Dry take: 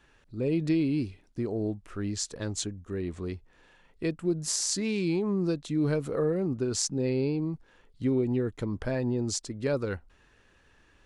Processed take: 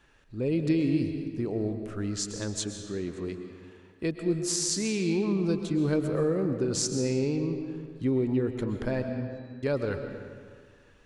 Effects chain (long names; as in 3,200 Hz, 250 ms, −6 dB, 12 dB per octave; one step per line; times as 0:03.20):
0:02.64–0:04.03: high-pass filter 110 Hz
0:09.02–0:09.63: resonances in every octave B, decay 0.71 s
convolution reverb RT60 1.9 s, pre-delay 87 ms, DRR 6 dB